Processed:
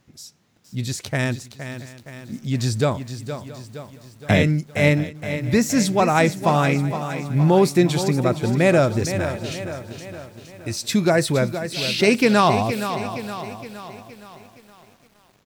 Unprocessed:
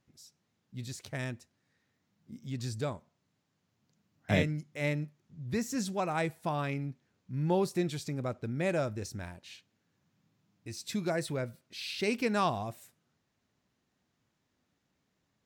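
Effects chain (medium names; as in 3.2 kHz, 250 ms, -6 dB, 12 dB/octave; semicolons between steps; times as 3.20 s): delay 672 ms -20.5 dB; loudness maximiser +19 dB; bit-crushed delay 467 ms, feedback 55%, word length 7-bit, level -10 dB; trim -4.5 dB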